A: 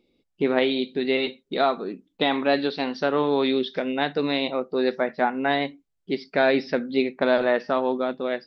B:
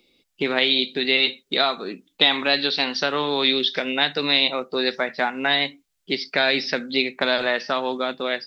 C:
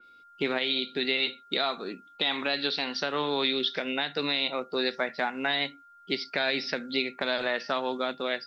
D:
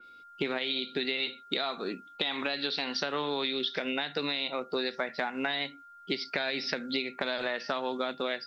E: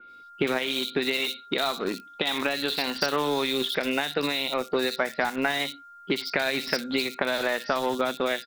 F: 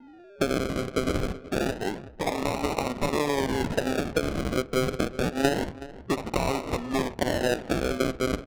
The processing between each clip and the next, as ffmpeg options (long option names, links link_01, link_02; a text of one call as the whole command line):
ffmpeg -i in.wav -filter_complex "[0:a]tiltshelf=frequency=1100:gain=-7.5,acrossover=split=170|3000[link_01][link_02][link_03];[link_02]acompressor=threshold=-31dB:ratio=2[link_04];[link_01][link_04][link_03]amix=inputs=3:normalize=0,volume=7dB" out.wav
ffmpeg -i in.wav -af "alimiter=limit=-9dB:level=0:latency=1:release=143,aeval=exprs='val(0)+0.00447*sin(2*PI*1400*n/s)':channel_layout=same,adynamicequalizer=threshold=0.0316:dfrequency=3500:dqfactor=0.7:tfrequency=3500:tqfactor=0.7:attack=5:release=100:ratio=0.375:range=1.5:mode=cutabove:tftype=highshelf,volume=-5dB" out.wav
ffmpeg -i in.wav -af "acompressor=threshold=-30dB:ratio=6,volume=2.5dB" out.wav
ffmpeg -i in.wav -filter_complex "[0:a]asplit=2[link_01][link_02];[link_02]acrusher=bits=4:mix=0:aa=0.000001,volume=-9.5dB[link_03];[link_01][link_03]amix=inputs=2:normalize=0,acrossover=split=3500[link_04][link_05];[link_05]adelay=60[link_06];[link_04][link_06]amix=inputs=2:normalize=0,volume=4dB" out.wav
ffmpeg -i in.wav -af "acrusher=samples=38:mix=1:aa=0.000001:lfo=1:lforange=22.8:lforate=0.27,aecho=1:1:374|748|1122:0.141|0.041|0.0119,adynamicsmooth=sensitivity=7:basefreq=1400" out.wav